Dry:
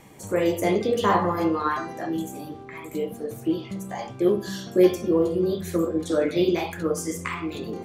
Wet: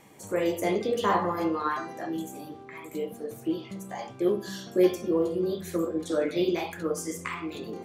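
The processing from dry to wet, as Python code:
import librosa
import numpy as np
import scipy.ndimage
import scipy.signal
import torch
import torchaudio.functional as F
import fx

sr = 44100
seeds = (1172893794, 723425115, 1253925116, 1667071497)

y = fx.low_shelf(x, sr, hz=100.0, db=-11.5)
y = y * librosa.db_to_amplitude(-3.5)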